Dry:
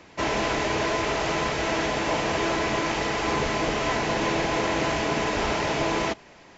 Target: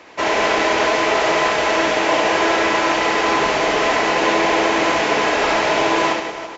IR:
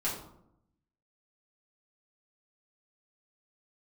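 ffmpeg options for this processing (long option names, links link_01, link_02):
-af "bass=frequency=250:gain=-15,treble=frequency=4000:gain=-4,aecho=1:1:70|175|332.5|568.8|923.1:0.631|0.398|0.251|0.158|0.1,volume=7.5dB"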